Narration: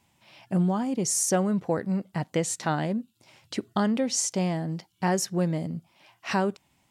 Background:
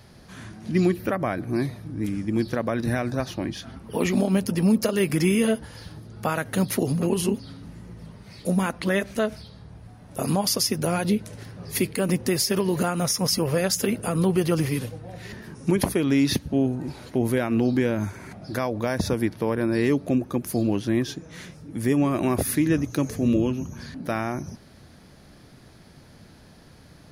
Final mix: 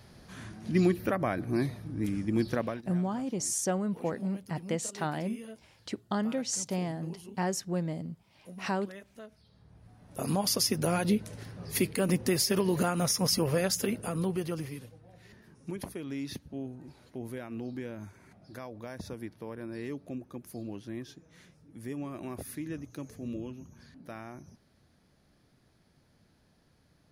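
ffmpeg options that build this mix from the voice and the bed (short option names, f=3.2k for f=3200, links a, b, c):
-filter_complex "[0:a]adelay=2350,volume=-6dB[a];[1:a]volume=15.5dB,afade=t=out:st=2.59:d=0.24:silence=0.105925,afade=t=in:st=9.37:d=1.27:silence=0.105925,afade=t=out:st=13.42:d=1.39:silence=0.237137[b];[a][b]amix=inputs=2:normalize=0"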